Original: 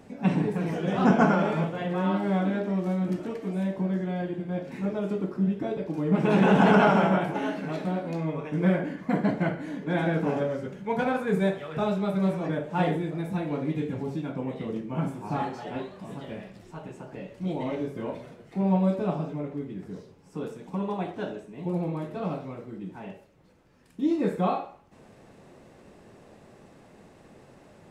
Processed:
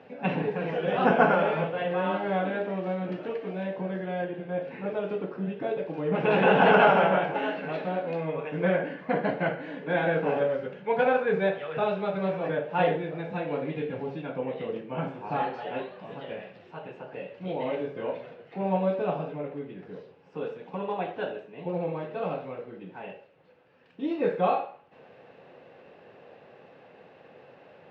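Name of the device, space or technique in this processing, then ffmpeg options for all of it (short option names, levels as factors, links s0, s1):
kitchen radio: -filter_complex "[0:a]highpass=160,equalizer=f=210:t=q:w=4:g=-7,equalizer=f=320:t=q:w=4:g=-5,equalizer=f=500:t=q:w=4:g=8,equalizer=f=770:t=q:w=4:g=4,equalizer=f=1600:t=q:w=4:g=5,equalizer=f=2700:t=q:w=4:g=7,lowpass=f=4000:w=0.5412,lowpass=f=4000:w=1.3066,asettb=1/sr,asplit=3[s0][s1][s2];[s0]atrim=end=4.244[s3];[s1]atrim=start=4.24:end=4.86,asetpts=PTS-STARTPTS,afade=t=in:d=0.004:c=qsin,afade=t=out:st=0.616:d=0.004:c=qsin,acrossover=split=2700[s4][s5];[s5]acompressor=threshold=0.00112:ratio=4:attack=1:release=60[s6];[s4][s6]amix=inputs=2:normalize=0[s7];[s2]atrim=start=4.856[s8];[s3][s7]acrossfade=d=0.004:c1=hsin:c2=qsin[s9];[s9][s8]acrossfade=d=0.004:c1=qsin:c2=hsin,volume=0.891"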